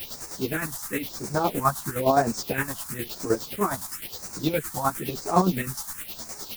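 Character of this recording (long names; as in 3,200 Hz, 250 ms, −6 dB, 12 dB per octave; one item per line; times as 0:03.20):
a quantiser's noise floor 6 bits, dither triangular
phaser sweep stages 4, 0.99 Hz, lowest notch 400–3,200 Hz
chopped level 9.7 Hz, depth 60%, duty 40%
a shimmering, thickened sound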